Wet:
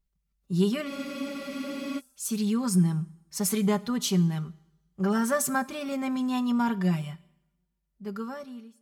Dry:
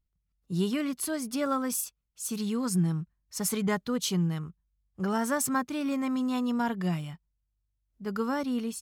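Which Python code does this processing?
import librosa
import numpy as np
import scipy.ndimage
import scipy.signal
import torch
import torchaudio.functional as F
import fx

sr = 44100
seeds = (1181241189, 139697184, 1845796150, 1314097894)

y = fx.fade_out_tail(x, sr, length_s=1.39)
y = y + 0.72 * np.pad(y, (int(5.1 * sr / 1000.0), 0))[:len(y)]
y = fx.rev_double_slope(y, sr, seeds[0], early_s=0.77, late_s=2.0, knee_db=-26, drr_db=16.5)
y = fx.spec_freeze(y, sr, seeds[1], at_s=0.9, hold_s=1.08)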